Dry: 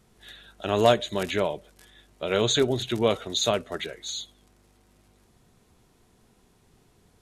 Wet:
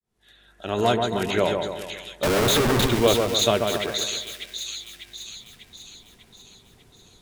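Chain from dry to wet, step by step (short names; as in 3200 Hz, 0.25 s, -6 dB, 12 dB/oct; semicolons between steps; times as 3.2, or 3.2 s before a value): opening faded in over 1.26 s; 0.74–1.38 notch comb 570 Hz; 2.23–2.87 Schmitt trigger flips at -33.5 dBFS; split-band echo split 2100 Hz, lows 0.137 s, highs 0.596 s, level -4.5 dB; gain +3.5 dB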